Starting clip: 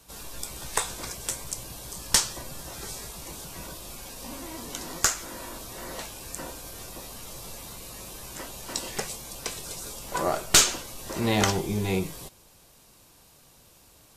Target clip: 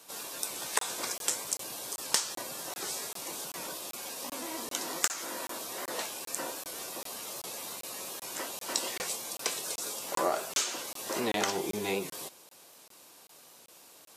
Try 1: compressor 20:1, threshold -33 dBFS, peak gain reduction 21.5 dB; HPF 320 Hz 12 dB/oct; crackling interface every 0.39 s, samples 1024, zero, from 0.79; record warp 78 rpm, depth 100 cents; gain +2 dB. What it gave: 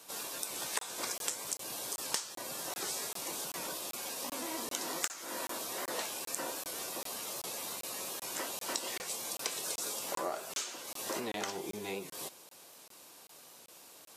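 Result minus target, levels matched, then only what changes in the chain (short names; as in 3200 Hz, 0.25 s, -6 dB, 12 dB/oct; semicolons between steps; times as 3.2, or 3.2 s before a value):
compressor: peak gain reduction +7.5 dB
change: compressor 20:1, threshold -25 dBFS, peak gain reduction 13.5 dB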